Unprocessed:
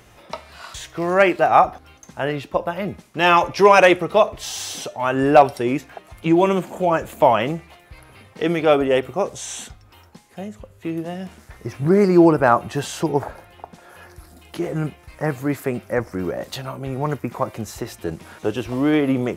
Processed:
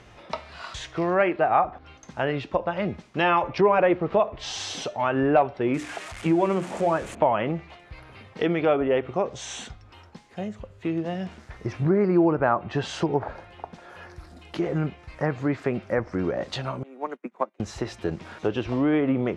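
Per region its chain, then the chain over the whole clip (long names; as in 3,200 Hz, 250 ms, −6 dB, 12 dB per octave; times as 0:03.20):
0:03.58–0:04.20: low-pass filter 1,500 Hz 6 dB per octave + low-shelf EQ 350 Hz +4 dB + centre clipping without the shift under −35.5 dBFS
0:05.74–0:07.15: spike at every zero crossing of −15.5 dBFS + high shelf with overshoot 6,300 Hz +14 dB, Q 1.5 + mains-hum notches 60/120/180/240/300/360/420/480 Hz
0:16.83–0:17.60: Butterworth high-pass 180 Hz 96 dB per octave + parametric band 4,900 Hz −7.5 dB 0.43 octaves + expander for the loud parts 2.5 to 1, over −40 dBFS
whole clip: treble cut that deepens with the level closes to 2,500 Hz, closed at −15 dBFS; low-pass filter 5,100 Hz 12 dB per octave; downward compressor 2 to 1, threshold −22 dBFS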